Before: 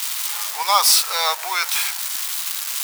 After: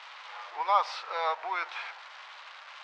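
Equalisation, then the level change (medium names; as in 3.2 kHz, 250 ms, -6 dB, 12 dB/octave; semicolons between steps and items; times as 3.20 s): distance through air 120 m; tape spacing loss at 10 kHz 40 dB; -2.0 dB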